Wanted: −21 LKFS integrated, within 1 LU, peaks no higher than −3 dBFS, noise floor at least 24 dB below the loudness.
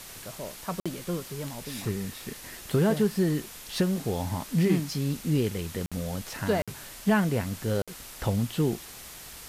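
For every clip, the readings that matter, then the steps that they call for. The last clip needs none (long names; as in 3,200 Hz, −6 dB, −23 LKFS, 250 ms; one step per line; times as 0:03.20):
number of dropouts 4; longest dropout 56 ms; background noise floor −45 dBFS; target noise floor −54 dBFS; integrated loudness −29.5 LKFS; sample peak −12.5 dBFS; target loudness −21.0 LKFS
→ repair the gap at 0:00.80/0:05.86/0:06.62/0:07.82, 56 ms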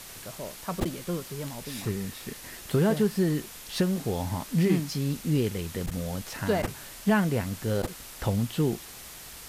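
number of dropouts 0; background noise floor −45 dBFS; target noise floor −53 dBFS
→ noise reduction from a noise print 8 dB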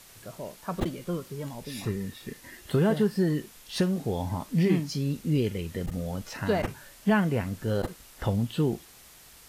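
background noise floor −52 dBFS; target noise floor −53 dBFS
→ noise reduction from a noise print 6 dB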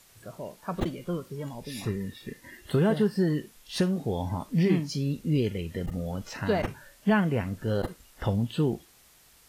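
background noise floor −58 dBFS; integrated loudness −29.5 LKFS; sample peak −13.0 dBFS; target loudness −21.0 LKFS
→ level +8.5 dB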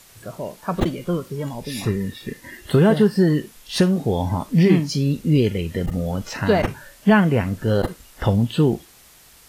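integrated loudness −21.0 LKFS; sample peak −4.5 dBFS; background noise floor −50 dBFS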